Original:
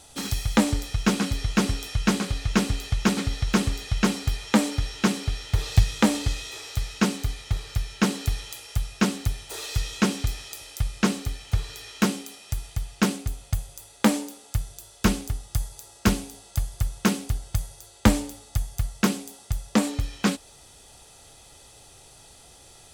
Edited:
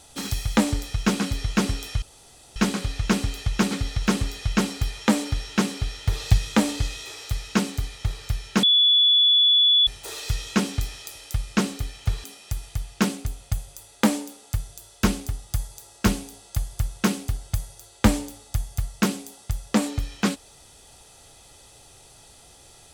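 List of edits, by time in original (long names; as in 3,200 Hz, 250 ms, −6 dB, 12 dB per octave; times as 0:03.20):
0:02.02: splice in room tone 0.54 s
0:08.09–0:09.33: beep over 3,430 Hz −14 dBFS
0:11.70–0:12.25: remove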